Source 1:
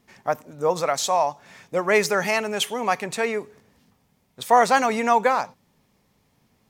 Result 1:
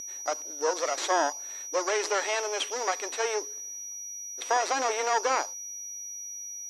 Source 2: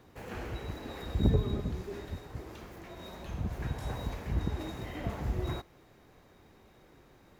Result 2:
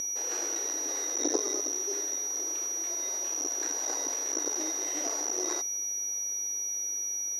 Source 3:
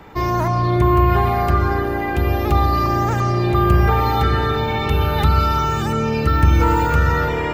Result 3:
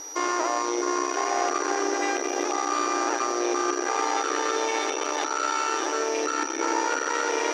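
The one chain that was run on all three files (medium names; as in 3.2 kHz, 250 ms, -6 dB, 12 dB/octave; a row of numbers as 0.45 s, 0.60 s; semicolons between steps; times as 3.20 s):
peak limiter -12.5 dBFS; whistle 5.8 kHz -27 dBFS; half-wave rectifier; brick-wall FIR band-pass 270–12000 Hz; distance through air 95 m; peak normalisation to -12 dBFS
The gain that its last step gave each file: +2.0 dB, +8.0 dB, +2.0 dB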